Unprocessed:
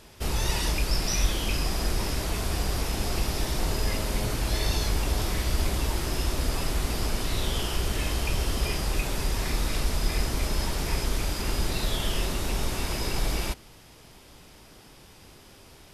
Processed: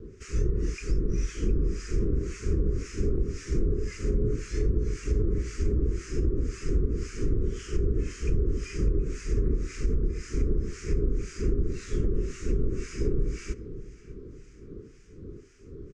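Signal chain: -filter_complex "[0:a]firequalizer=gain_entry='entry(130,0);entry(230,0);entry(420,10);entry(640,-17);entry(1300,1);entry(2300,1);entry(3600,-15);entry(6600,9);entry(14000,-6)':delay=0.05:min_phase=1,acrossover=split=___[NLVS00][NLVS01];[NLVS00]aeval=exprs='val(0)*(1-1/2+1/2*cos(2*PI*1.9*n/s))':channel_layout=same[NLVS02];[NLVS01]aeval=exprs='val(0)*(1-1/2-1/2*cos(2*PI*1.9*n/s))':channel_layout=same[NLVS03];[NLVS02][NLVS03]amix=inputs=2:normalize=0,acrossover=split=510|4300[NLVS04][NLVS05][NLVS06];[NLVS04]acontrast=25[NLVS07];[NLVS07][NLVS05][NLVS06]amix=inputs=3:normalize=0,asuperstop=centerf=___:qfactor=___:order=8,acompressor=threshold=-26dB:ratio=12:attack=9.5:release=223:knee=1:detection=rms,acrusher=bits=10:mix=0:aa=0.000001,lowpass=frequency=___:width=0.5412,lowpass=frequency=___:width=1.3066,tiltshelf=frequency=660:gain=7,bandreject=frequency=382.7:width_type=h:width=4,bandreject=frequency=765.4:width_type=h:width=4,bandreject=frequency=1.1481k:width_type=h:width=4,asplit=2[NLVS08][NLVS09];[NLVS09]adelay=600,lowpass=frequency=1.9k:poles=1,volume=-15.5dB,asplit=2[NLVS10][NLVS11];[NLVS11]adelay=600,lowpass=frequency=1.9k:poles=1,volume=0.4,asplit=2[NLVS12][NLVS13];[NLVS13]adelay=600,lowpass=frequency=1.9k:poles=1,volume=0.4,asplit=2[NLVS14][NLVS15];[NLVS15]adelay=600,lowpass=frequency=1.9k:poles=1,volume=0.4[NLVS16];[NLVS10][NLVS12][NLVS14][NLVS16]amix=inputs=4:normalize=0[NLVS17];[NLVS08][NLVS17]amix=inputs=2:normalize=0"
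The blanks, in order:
1300, 800, 2, 6.4k, 6.4k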